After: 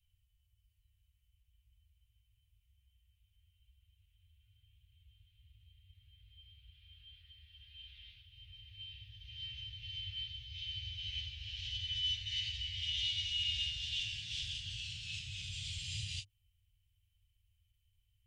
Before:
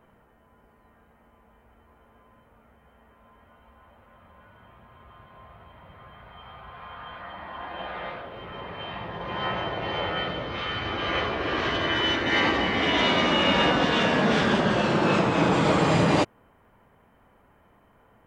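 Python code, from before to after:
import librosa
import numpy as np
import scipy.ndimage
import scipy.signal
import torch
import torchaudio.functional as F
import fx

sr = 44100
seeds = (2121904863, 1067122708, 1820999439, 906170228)

y = scipy.signal.sosfilt(scipy.signal.cheby1(4, 1.0, [100.0, 2900.0], 'bandstop', fs=sr, output='sos'), x)
y = fx.end_taper(y, sr, db_per_s=340.0)
y = F.gain(torch.from_numpy(y), -7.0).numpy()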